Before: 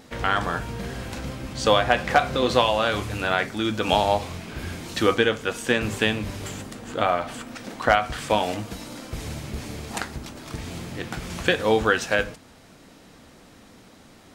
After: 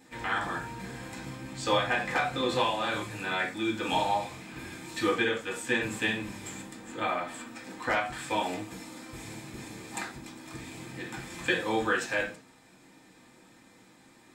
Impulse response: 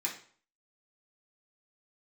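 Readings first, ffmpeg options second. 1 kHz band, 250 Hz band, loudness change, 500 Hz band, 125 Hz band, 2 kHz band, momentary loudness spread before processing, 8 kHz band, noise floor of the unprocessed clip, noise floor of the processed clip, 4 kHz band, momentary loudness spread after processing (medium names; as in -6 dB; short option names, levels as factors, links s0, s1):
-7.0 dB, -6.0 dB, -6.5 dB, -9.0 dB, -10.5 dB, -5.0 dB, 14 LU, -5.0 dB, -50 dBFS, -58 dBFS, -7.5 dB, 15 LU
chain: -filter_complex "[1:a]atrim=start_sample=2205,afade=t=out:st=0.15:d=0.01,atrim=end_sample=7056[s0];[0:a][s0]afir=irnorm=-1:irlink=0,volume=0.355"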